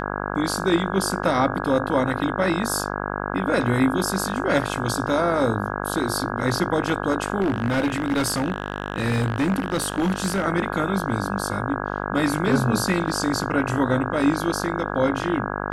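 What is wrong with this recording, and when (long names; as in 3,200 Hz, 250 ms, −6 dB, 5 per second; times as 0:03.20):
mains buzz 50 Hz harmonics 33 −28 dBFS
0:07.40–0:10.46: clipping −17.5 dBFS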